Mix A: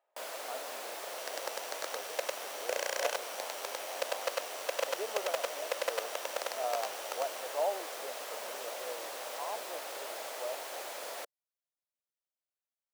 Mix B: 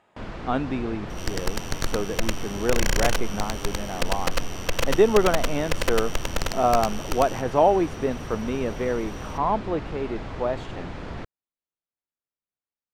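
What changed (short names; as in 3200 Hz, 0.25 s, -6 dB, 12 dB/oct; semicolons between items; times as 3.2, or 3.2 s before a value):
speech +11.0 dB; first sound: add tape spacing loss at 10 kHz 35 dB; master: remove ladder high-pass 500 Hz, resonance 55%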